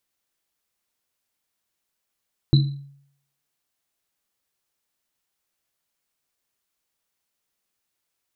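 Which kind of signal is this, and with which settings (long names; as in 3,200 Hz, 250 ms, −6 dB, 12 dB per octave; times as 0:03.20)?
drum after Risset, pitch 140 Hz, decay 0.66 s, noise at 4,000 Hz, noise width 150 Hz, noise 15%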